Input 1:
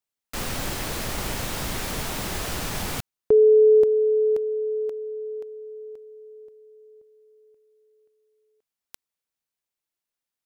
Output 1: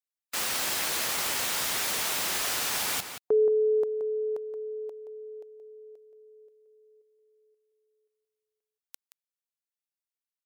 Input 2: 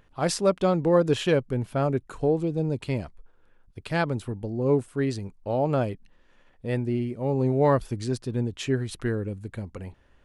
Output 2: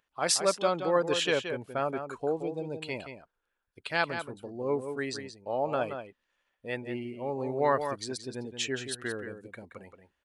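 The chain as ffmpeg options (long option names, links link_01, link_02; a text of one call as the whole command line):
ffmpeg -i in.wav -filter_complex "[0:a]afftdn=noise_reduction=14:noise_floor=-46,highpass=frequency=1200:poles=1,highshelf=frequency=4900:gain=3.5,asplit=2[link_01][link_02];[link_02]adelay=174.9,volume=-8dB,highshelf=frequency=4000:gain=-3.94[link_03];[link_01][link_03]amix=inputs=2:normalize=0,volume=2.5dB" out.wav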